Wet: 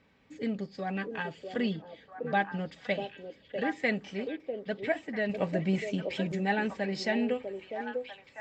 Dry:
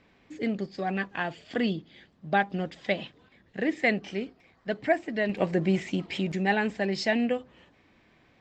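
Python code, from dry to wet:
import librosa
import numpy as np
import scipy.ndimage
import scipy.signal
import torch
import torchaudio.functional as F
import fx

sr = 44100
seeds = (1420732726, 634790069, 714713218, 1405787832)

y = fx.notch_comb(x, sr, f0_hz=350.0)
y = fx.echo_stepped(y, sr, ms=647, hz=430.0, octaves=1.4, feedback_pct=70, wet_db=-2)
y = y * 10.0 ** (-3.0 / 20.0)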